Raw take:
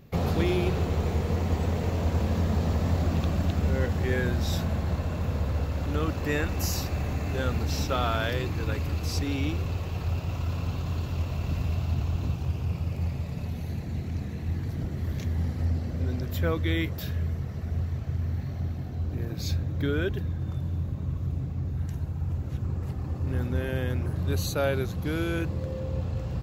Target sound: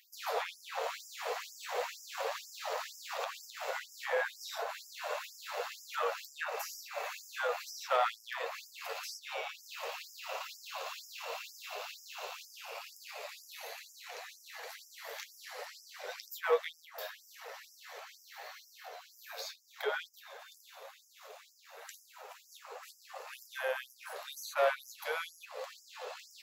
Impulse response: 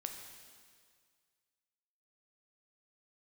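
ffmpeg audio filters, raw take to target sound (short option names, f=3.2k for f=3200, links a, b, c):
-filter_complex "[0:a]acrossover=split=1700[a][b];[a]asoftclip=type=tanh:threshold=-25.5dB[c];[b]acompressor=threshold=-48dB:ratio=16[d];[c][d]amix=inputs=2:normalize=0,aeval=exprs='0.0668*(cos(1*acos(clip(val(0)/0.0668,-1,1)))-cos(1*PI/2))+0.00133*(cos(7*acos(clip(val(0)/0.0668,-1,1)))-cos(7*PI/2))+0.00133*(cos(8*acos(clip(val(0)/0.0668,-1,1)))-cos(8*PI/2))':c=same,flanger=delay=8.6:depth=4:regen=42:speed=0.86:shape=triangular,afftfilt=real='re*gte(b*sr/1024,420*pow(5000/420,0.5+0.5*sin(2*PI*2.1*pts/sr)))':imag='im*gte(b*sr/1024,420*pow(5000/420,0.5+0.5*sin(2*PI*2.1*pts/sr)))':win_size=1024:overlap=0.75,volume=9.5dB"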